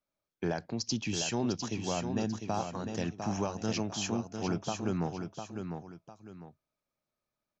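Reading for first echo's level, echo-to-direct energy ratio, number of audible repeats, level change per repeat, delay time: -6.5 dB, -6.0 dB, 2, -9.5 dB, 702 ms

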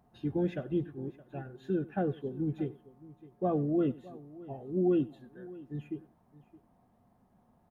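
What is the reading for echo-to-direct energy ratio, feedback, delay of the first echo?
-17.0 dB, no regular repeats, 95 ms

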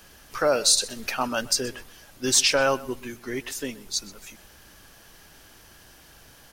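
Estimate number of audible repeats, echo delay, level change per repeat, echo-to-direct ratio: 2, 127 ms, -14.0 dB, -19.5 dB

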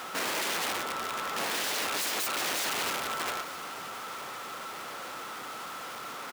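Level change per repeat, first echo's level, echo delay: -15.0 dB, -17.5 dB, 910 ms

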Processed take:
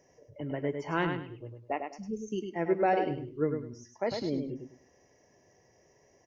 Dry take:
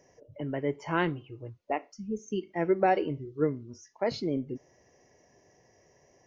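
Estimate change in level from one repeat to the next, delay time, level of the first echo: -12.0 dB, 102 ms, -6.0 dB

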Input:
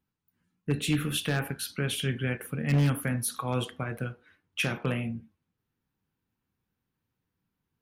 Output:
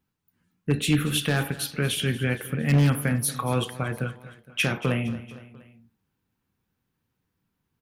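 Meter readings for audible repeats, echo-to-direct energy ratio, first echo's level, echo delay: 3, -15.5 dB, -17.0 dB, 232 ms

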